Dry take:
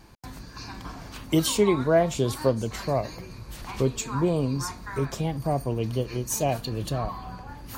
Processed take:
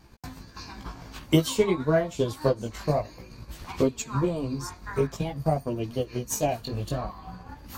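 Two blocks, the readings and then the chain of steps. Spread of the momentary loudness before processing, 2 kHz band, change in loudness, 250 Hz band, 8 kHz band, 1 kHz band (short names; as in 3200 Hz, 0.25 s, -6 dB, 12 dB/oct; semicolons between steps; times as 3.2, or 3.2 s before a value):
18 LU, -1.0 dB, -1.5 dB, -1.0 dB, -3.5 dB, -2.0 dB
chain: transient shaper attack +7 dB, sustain -5 dB; bell 9700 Hz -5.5 dB 0.22 oct; chorus voices 2, 0.52 Hz, delay 16 ms, depth 4.5 ms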